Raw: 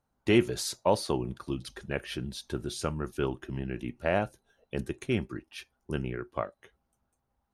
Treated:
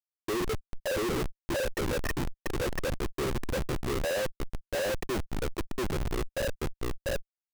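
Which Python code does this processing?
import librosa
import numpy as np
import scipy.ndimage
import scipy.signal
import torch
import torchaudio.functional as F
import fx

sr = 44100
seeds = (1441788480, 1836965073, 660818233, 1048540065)

p1 = fx.envelope_sharpen(x, sr, power=2.0)
p2 = fx.formant_cascade(p1, sr, vowel='e')
p3 = p2 + fx.echo_single(p2, sr, ms=687, db=-3.5, dry=0)
p4 = fx.schmitt(p3, sr, flips_db=-49.0)
p5 = fx.leveller(p4, sr, passes=5)
y = p5 * 10.0 ** (6.5 / 20.0)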